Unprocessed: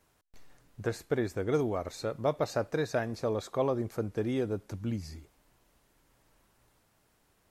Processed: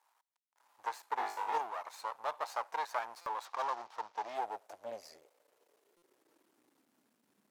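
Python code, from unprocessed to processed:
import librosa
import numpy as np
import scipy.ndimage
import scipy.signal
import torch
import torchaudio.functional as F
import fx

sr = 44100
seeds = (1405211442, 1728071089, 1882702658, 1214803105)

y = fx.cvsd(x, sr, bps=32000, at=(3.45, 4.35))
y = np.maximum(y, 0.0)
y = fx.room_flutter(y, sr, wall_m=3.4, rt60_s=0.44, at=(1.17, 1.57), fade=0.02)
y = fx.filter_sweep_highpass(y, sr, from_hz=900.0, to_hz=220.0, start_s=4.07, end_s=7.3, q=4.7)
y = fx.buffer_glitch(y, sr, at_s=(3.21, 5.97), block=256, repeats=8)
y = y * librosa.db_to_amplitude(-3.0)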